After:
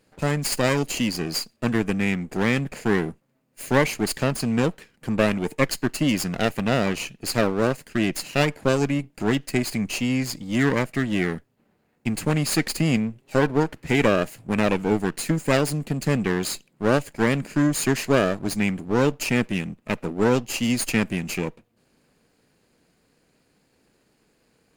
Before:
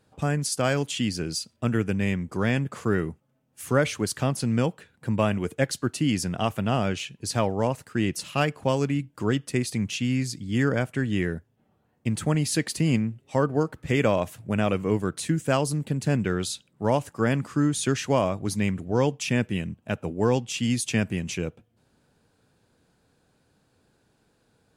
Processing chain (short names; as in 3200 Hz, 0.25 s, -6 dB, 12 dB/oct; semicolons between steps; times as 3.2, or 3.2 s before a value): minimum comb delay 0.44 ms; bell 93 Hz -11 dB 1.2 oct; gain +4.5 dB